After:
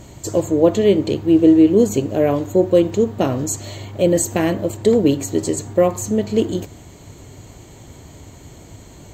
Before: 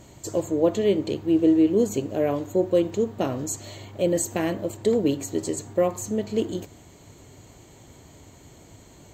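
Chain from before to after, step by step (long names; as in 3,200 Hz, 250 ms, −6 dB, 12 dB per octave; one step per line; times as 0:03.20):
low-shelf EQ 130 Hz +5.5 dB
level +6.5 dB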